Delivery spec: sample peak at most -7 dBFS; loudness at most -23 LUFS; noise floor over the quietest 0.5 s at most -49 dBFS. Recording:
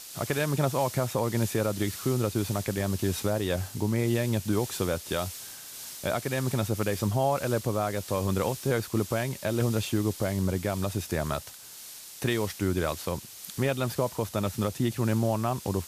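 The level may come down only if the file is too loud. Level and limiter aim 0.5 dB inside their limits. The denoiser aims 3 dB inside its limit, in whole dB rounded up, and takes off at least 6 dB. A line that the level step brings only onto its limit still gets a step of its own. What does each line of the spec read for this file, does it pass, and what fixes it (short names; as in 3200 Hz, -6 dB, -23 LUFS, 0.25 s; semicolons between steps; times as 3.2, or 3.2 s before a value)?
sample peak -14.5 dBFS: OK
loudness -29.0 LUFS: OK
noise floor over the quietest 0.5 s -45 dBFS: fail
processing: denoiser 7 dB, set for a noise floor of -45 dBFS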